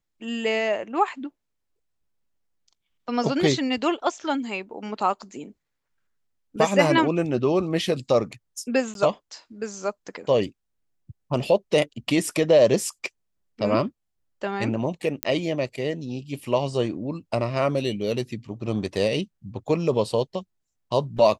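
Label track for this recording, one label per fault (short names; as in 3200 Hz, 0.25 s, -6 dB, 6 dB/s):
8.940000	8.950000	gap 12 ms
15.230000	15.230000	pop -5 dBFS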